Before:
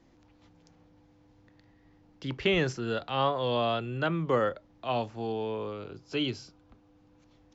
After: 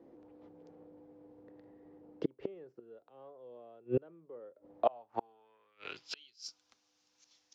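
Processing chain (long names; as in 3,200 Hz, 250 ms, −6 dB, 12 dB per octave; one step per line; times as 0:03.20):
leveller curve on the samples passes 1
gate with flip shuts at −24 dBFS, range −36 dB
band-pass filter sweep 440 Hz → 5,800 Hz, 0:04.64–0:06.48
level +13.5 dB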